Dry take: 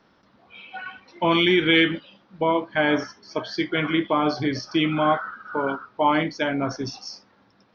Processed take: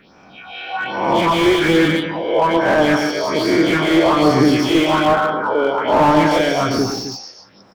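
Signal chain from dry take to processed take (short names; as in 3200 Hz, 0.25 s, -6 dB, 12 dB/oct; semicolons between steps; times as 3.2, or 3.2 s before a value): spectral swells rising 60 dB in 1.07 s; low shelf 300 Hz -6 dB; in parallel at 0 dB: limiter -15.5 dBFS, peak gain reduction 10 dB; on the sum: phaser stages 4, 1.2 Hz, lowest notch 160–3700 Hz; on a send: tapped delay 0.114/0.148/0.185/0.262 s -10.5/-12.5/-16.5/-11.5 dB; on the sum: slew limiter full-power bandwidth 130 Hz; gain +5.5 dB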